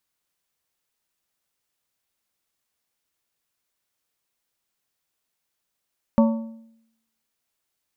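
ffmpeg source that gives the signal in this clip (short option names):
-f lavfi -i "aevalsrc='0.266*pow(10,-3*t/0.77)*sin(2*PI*226*t)+0.133*pow(10,-3*t/0.585)*sin(2*PI*565*t)+0.0668*pow(10,-3*t/0.508)*sin(2*PI*904*t)+0.0335*pow(10,-3*t/0.475)*sin(2*PI*1130*t)':d=1.55:s=44100"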